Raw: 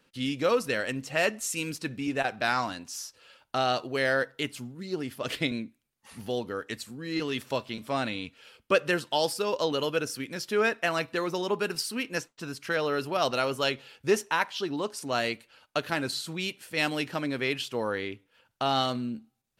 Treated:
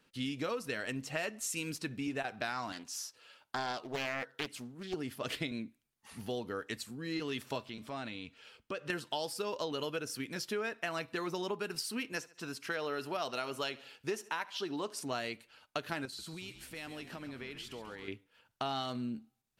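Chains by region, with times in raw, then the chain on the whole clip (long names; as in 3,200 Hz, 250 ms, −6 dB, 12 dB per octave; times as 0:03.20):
0:02.72–0:04.94: high-pass filter 210 Hz 6 dB per octave + highs frequency-modulated by the lows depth 0.61 ms
0:07.67–0:08.90: parametric band 12,000 Hz −7.5 dB 0.67 octaves + downward compressor 2 to 1, threshold −40 dBFS
0:12.12–0:15.03: low-shelf EQ 130 Hz −11 dB + repeating echo 71 ms, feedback 45%, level −22.5 dB
0:16.05–0:18.08: downward compressor 4 to 1, threshold −40 dBFS + echo with shifted repeats 136 ms, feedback 54%, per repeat −56 Hz, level −11 dB
whole clip: notch filter 530 Hz, Q 12; downward compressor, threshold −30 dBFS; level −3 dB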